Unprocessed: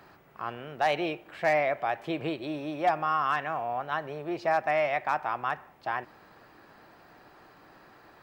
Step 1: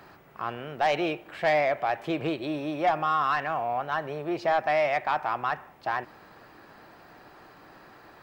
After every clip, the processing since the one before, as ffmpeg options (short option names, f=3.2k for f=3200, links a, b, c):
-af "asoftclip=type=tanh:threshold=-19.5dB,volume=3.5dB"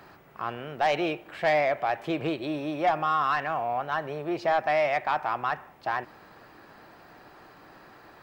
-af anull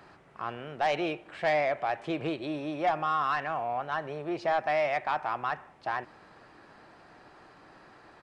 -af "aresample=22050,aresample=44100,volume=-3dB"